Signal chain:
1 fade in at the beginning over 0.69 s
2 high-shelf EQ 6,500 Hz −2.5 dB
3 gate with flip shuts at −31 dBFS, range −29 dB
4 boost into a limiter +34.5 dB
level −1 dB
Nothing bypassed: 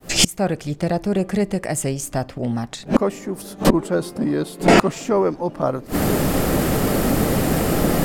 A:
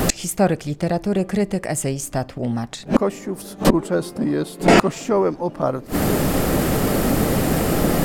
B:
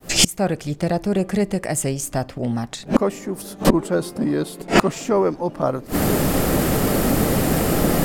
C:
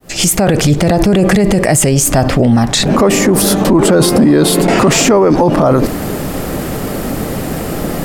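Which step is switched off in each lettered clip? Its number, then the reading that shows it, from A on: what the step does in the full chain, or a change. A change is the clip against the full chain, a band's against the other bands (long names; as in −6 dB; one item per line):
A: 1, 4 kHz band −4.0 dB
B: 2, 8 kHz band +1.5 dB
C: 3, change in momentary loudness spread +2 LU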